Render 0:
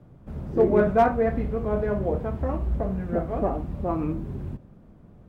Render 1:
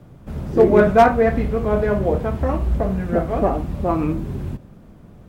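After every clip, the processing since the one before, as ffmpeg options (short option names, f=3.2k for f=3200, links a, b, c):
-af "highshelf=f=2.1k:g=9,volume=6dB"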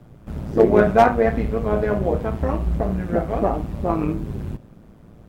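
-af "tremolo=f=110:d=0.621,volume=1dB"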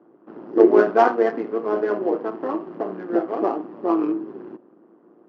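-af "adynamicsmooth=sensitivity=3.5:basefreq=1.5k,highpass=f=290:w=0.5412,highpass=f=290:w=1.3066,equalizer=f=340:t=q:w=4:g=9,equalizer=f=590:t=q:w=4:g=-4,equalizer=f=1.1k:t=q:w=4:g=3,equalizer=f=2.3k:t=q:w=4:g=-7,equalizer=f=3.7k:t=q:w=4:g=-9,lowpass=f=5.3k:w=0.5412,lowpass=f=5.3k:w=1.3066,volume=-1dB"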